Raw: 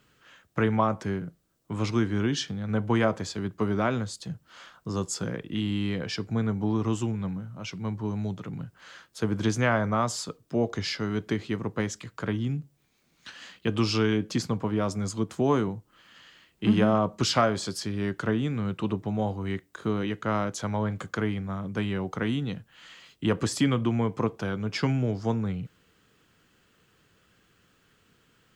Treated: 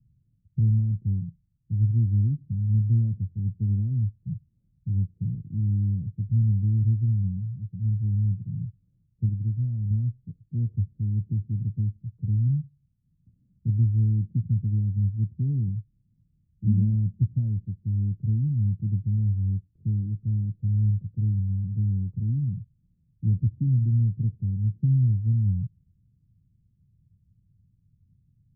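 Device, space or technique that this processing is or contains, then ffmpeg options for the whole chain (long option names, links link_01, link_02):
the neighbour's flat through the wall: -filter_complex "[0:a]lowpass=frequency=150:width=0.5412,lowpass=frequency=150:width=1.3066,equalizer=frequency=97:width_type=o:width=0.77:gain=4,asettb=1/sr,asplit=3[link_01][link_02][link_03];[link_01]atrim=end=9.294[link_04];[link_02]atrim=start=9.29:end=9.91,asetpts=PTS-STARTPTS,afade=type=in:duration=0.004:curve=qsin,afade=type=out:start_time=0.616:duration=0.004:curve=qsin,tiltshelf=frequency=1200:gain=-5.5[link_05];[link_03]atrim=start=9.906[link_06];[link_04][link_05]acrossfade=duration=0.004:curve1=hsin:curve2=qsin[link_07];[link_07][link_06]acrossfade=duration=0.004:curve1=qsin:curve2=hsin,volume=7dB"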